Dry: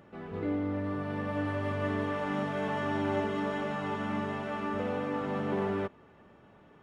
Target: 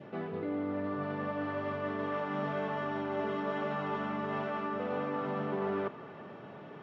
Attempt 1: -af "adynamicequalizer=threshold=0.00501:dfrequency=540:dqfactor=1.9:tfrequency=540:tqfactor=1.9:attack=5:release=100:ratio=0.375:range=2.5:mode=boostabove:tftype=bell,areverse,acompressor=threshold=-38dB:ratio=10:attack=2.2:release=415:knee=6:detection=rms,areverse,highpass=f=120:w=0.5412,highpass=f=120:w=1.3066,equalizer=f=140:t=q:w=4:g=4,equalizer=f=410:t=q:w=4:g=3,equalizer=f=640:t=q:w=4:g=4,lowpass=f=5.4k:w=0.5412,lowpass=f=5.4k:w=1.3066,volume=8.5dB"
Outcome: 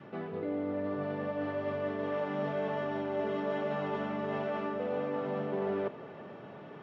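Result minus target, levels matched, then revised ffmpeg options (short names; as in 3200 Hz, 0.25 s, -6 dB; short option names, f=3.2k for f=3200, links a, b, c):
1000 Hz band -3.0 dB
-af "adynamicequalizer=threshold=0.00501:dfrequency=1200:dqfactor=1.9:tfrequency=1200:tqfactor=1.9:attack=5:release=100:ratio=0.375:range=2.5:mode=boostabove:tftype=bell,areverse,acompressor=threshold=-38dB:ratio=10:attack=2.2:release=415:knee=6:detection=rms,areverse,highpass=f=120:w=0.5412,highpass=f=120:w=1.3066,equalizer=f=140:t=q:w=4:g=4,equalizer=f=410:t=q:w=4:g=3,equalizer=f=640:t=q:w=4:g=4,lowpass=f=5.4k:w=0.5412,lowpass=f=5.4k:w=1.3066,volume=8.5dB"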